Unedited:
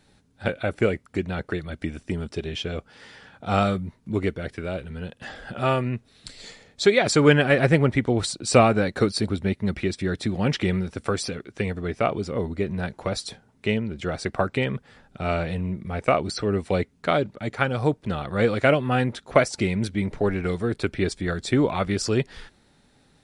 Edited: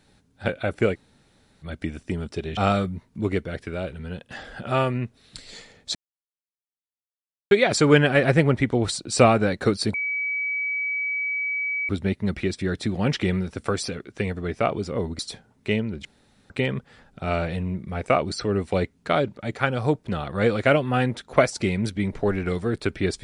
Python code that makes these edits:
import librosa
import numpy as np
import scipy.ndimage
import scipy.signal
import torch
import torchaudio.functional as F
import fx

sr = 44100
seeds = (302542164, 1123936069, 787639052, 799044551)

y = fx.edit(x, sr, fx.room_tone_fill(start_s=0.94, length_s=0.69, crossfade_s=0.04),
    fx.cut(start_s=2.57, length_s=0.91),
    fx.insert_silence(at_s=6.86, length_s=1.56),
    fx.insert_tone(at_s=9.29, length_s=1.95, hz=2280.0, db=-23.5),
    fx.cut(start_s=12.59, length_s=0.58),
    fx.room_tone_fill(start_s=14.03, length_s=0.45), tone=tone)